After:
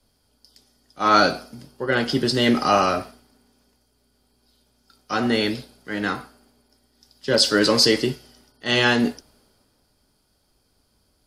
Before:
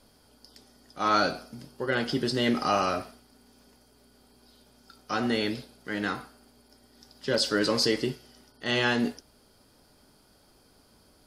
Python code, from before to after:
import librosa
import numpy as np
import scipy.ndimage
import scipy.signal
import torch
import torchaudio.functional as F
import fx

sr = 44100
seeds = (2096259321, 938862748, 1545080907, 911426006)

y = fx.band_widen(x, sr, depth_pct=40)
y = y * 10.0 ** (6.0 / 20.0)